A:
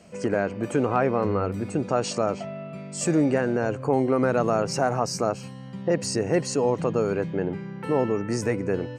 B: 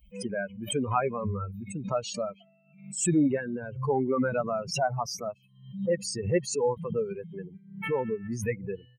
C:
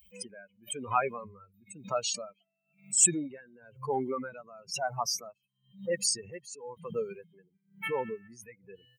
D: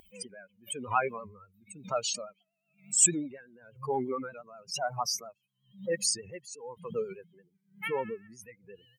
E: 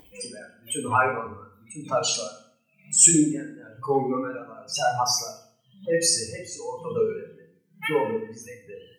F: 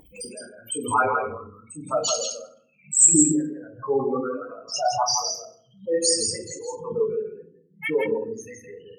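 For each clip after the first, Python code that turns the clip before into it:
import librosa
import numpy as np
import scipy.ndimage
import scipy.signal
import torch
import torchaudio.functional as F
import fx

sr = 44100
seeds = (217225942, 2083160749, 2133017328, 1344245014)

y1 = fx.bin_expand(x, sr, power=3.0)
y1 = fx.pre_swell(y1, sr, db_per_s=100.0)
y1 = y1 * librosa.db_to_amplitude(1.5)
y2 = fx.tilt_eq(y1, sr, slope=3.0)
y2 = y2 * 10.0 ** (-19 * (0.5 - 0.5 * np.cos(2.0 * np.pi * 1.0 * np.arange(len(y2)) / sr)) / 20.0)
y3 = fx.vibrato(y2, sr, rate_hz=8.4, depth_cents=64.0)
y4 = fx.rev_fdn(y3, sr, rt60_s=0.54, lf_ratio=1.5, hf_ratio=0.9, size_ms=20.0, drr_db=-1.5)
y4 = y4 * librosa.db_to_amplitude(4.0)
y5 = fx.envelope_sharpen(y4, sr, power=2.0)
y5 = y5 + 10.0 ** (-5.0 / 20.0) * np.pad(y5, (int(164 * sr / 1000.0), 0))[:len(y5)]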